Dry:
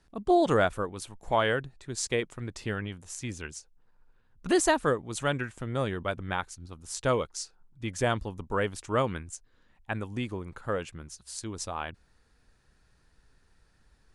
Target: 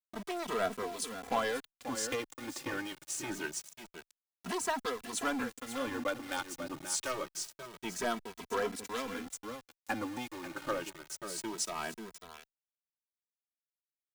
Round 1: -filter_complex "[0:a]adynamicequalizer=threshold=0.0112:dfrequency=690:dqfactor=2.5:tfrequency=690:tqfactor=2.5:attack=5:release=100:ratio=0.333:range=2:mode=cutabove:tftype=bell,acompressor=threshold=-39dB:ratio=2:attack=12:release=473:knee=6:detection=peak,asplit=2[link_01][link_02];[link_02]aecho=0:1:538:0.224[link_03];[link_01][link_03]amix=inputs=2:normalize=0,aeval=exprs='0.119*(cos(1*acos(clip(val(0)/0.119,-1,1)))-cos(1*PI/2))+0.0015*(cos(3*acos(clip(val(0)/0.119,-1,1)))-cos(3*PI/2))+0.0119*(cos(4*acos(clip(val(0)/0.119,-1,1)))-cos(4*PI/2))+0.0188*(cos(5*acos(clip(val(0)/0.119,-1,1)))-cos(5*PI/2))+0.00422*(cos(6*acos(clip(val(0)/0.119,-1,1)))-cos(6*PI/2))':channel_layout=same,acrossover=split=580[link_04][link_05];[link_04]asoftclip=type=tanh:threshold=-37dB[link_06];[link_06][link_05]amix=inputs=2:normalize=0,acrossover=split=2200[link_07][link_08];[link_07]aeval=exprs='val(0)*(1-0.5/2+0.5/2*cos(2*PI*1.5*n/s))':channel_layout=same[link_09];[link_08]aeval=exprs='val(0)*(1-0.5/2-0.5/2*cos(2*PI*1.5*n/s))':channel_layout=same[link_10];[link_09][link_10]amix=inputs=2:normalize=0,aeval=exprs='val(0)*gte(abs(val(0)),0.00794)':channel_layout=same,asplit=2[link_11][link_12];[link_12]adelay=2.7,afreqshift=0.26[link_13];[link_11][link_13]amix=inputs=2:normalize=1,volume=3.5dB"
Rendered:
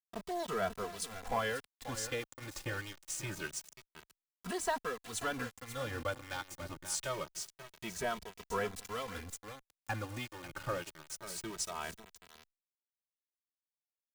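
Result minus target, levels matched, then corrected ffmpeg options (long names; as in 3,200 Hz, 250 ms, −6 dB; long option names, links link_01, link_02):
250 Hz band −3.5 dB; downward compressor: peak gain reduction +2.5 dB
-filter_complex "[0:a]adynamicequalizer=threshold=0.0112:dfrequency=690:dqfactor=2.5:tfrequency=690:tqfactor=2.5:attack=5:release=100:ratio=0.333:range=2:mode=cutabove:tftype=bell,highpass=frequency=260:width_type=q:width=3,acompressor=threshold=-30dB:ratio=2:attack=12:release=473:knee=6:detection=peak,asplit=2[link_01][link_02];[link_02]aecho=0:1:538:0.224[link_03];[link_01][link_03]amix=inputs=2:normalize=0,aeval=exprs='0.119*(cos(1*acos(clip(val(0)/0.119,-1,1)))-cos(1*PI/2))+0.0015*(cos(3*acos(clip(val(0)/0.119,-1,1)))-cos(3*PI/2))+0.0119*(cos(4*acos(clip(val(0)/0.119,-1,1)))-cos(4*PI/2))+0.0188*(cos(5*acos(clip(val(0)/0.119,-1,1)))-cos(5*PI/2))+0.00422*(cos(6*acos(clip(val(0)/0.119,-1,1)))-cos(6*PI/2))':channel_layout=same,acrossover=split=580[link_04][link_05];[link_04]asoftclip=type=tanh:threshold=-37dB[link_06];[link_06][link_05]amix=inputs=2:normalize=0,acrossover=split=2200[link_07][link_08];[link_07]aeval=exprs='val(0)*(1-0.5/2+0.5/2*cos(2*PI*1.5*n/s))':channel_layout=same[link_09];[link_08]aeval=exprs='val(0)*(1-0.5/2-0.5/2*cos(2*PI*1.5*n/s))':channel_layout=same[link_10];[link_09][link_10]amix=inputs=2:normalize=0,aeval=exprs='val(0)*gte(abs(val(0)),0.00794)':channel_layout=same,asplit=2[link_11][link_12];[link_12]adelay=2.7,afreqshift=0.26[link_13];[link_11][link_13]amix=inputs=2:normalize=1,volume=3.5dB"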